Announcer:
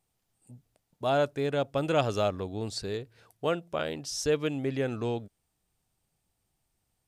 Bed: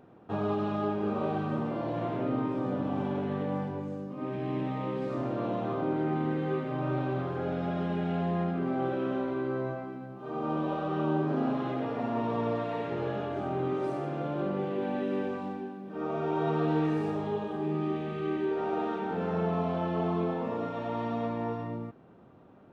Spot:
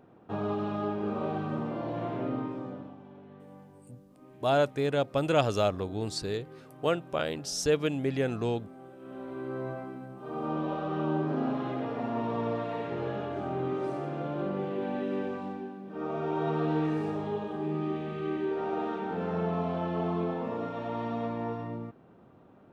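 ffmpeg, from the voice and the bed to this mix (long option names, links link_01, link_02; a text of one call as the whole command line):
ffmpeg -i stem1.wav -i stem2.wav -filter_complex "[0:a]adelay=3400,volume=1dB[link_01];[1:a]volume=16dB,afade=type=out:start_time=2.25:duration=0.72:silence=0.141254,afade=type=in:start_time=8.99:duration=0.81:silence=0.133352[link_02];[link_01][link_02]amix=inputs=2:normalize=0" out.wav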